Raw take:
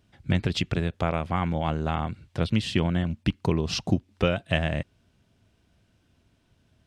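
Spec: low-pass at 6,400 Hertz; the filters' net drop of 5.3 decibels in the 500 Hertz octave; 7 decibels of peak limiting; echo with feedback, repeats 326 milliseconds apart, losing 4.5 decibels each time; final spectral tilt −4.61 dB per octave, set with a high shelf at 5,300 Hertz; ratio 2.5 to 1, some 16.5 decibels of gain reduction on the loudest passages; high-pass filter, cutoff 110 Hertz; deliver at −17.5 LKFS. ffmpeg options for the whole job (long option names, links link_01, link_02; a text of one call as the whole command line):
ffmpeg -i in.wav -af "highpass=110,lowpass=6400,equalizer=frequency=500:width_type=o:gain=-7,highshelf=frequency=5300:gain=4.5,acompressor=threshold=-48dB:ratio=2.5,alimiter=level_in=8dB:limit=-24dB:level=0:latency=1,volume=-8dB,aecho=1:1:326|652|978|1304|1630|1956|2282|2608|2934:0.596|0.357|0.214|0.129|0.0772|0.0463|0.0278|0.0167|0.01,volume=27dB" out.wav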